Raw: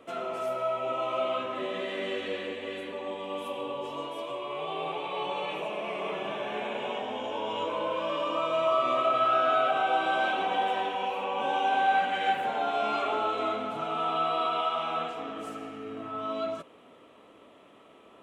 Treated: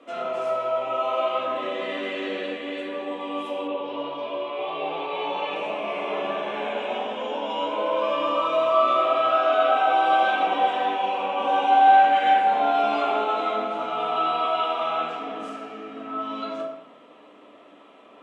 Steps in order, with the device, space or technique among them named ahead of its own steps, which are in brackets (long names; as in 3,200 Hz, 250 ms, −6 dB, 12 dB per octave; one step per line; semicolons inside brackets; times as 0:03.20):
supermarket ceiling speaker (band-pass filter 230–7,000 Hz; convolution reverb RT60 0.90 s, pre-delay 3 ms, DRR −3 dB)
0:03.67–0:05.54: low-pass filter 3,800 Hz → 7,400 Hz 24 dB per octave